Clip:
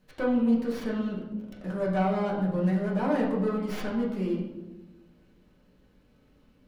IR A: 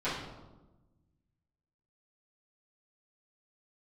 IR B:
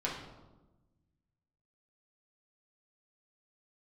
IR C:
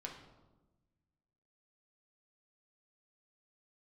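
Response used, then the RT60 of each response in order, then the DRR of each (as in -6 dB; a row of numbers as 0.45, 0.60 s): B; 1.1, 1.1, 1.1 s; -14.0, -5.0, -0.5 dB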